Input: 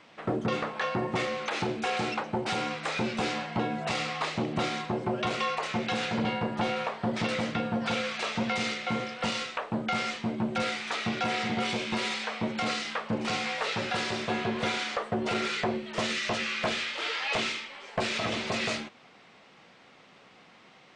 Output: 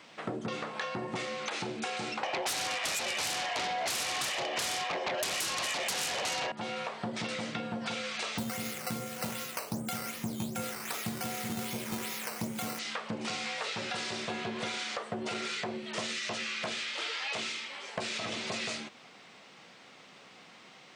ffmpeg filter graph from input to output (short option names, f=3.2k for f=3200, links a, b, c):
-filter_complex "[0:a]asettb=1/sr,asplit=3[a][b][c];[a]atrim=end=2.234[d];[b]atrim=start=2.23:end=6.52,asetpts=PTS-STARTPTS,afade=t=in:d=0.004:c=qsin,afade=t=out:st=4.286:d=0.004:c=qsin,highpass=f=400:w=0.5412,highpass=f=400:w=1.3066,equalizer=f=450:t=q:w=4:g=-7,equalizer=f=860:t=q:w=4:g=8,equalizer=f=1.3k:t=q:w=4:g=-5,equalizer=f=1.9k:t=q:w=4:g=4,equalizer=f=2.9k:t=q:w=4:g=5,equalizer=f=4.3k:t=q:w=4:g=-7,lowpass=f=5.5k:w=0.5412,lowpass=f=5.5k:w=1.3066,aecho=1:1:1.7:0.52,atrim=end_sample=189189,aeval=exprs='0.168*sin(PI/2*5.62*val(0)/0.168)':c=same[e];[c]atrim=start=6.516[f];[d][e]acrossfade=d=0.004:c1=hsin:c2=qsin[g];[g][f]acrossfade=d=0.004:c1=qsin:c2=hsin,asettb=1/sr,asplit=3[h][i][j];[h]atrim=end=8.384[k];[i]atrim=start=8.38:end=12.79,asetpts=PTS-STARTPTS,afade=t=in:d=0.004:c=qsin,afade=t=out:st=4.406:d=0.004:c=qsin,aemphasis=mode=reproduction:type=bsi,acrusher=samples=9:mix=1:aa=0.000001:lfo=1:lforange=9:lforate=2.6,asplit=2[l][m];[m]adelay=39,volume=-11dB[n];[l][n]amix=inputs=2:normalize=0,atrim=end_sample=194481[o];[j]atrim=start=12.786[p];[k][o]acrossfade=d=0.004:c1=hsin:c2=qsin[q];[q][p]acrossfade=d=0.004:c1=qsin:c2=hsin,highpass=100,highshelf=f=4.6k:g=10.5,acompressor=threshold=-33dB:ratio=6"